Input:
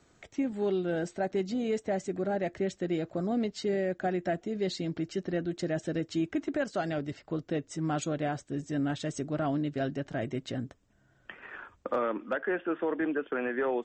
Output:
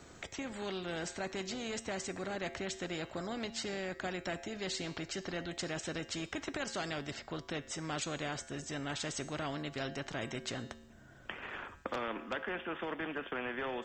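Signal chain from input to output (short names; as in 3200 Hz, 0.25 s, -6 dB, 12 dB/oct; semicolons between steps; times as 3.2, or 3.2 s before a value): resonator 76 Hz, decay 0.72 s, harmonics odd, mix 50%; spectral compressor 2:1; gain +2 dB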